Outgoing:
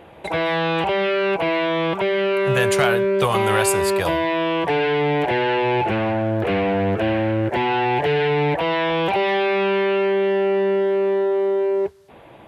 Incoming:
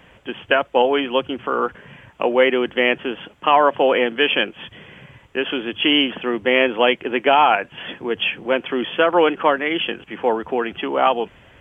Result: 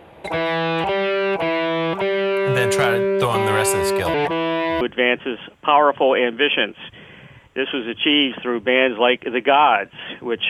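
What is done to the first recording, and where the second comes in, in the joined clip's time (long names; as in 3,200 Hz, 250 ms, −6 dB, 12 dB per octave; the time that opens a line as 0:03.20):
outgoing
0:04.14–0:04.81: reverse
0:04.81: continue with incoming from 0:02.60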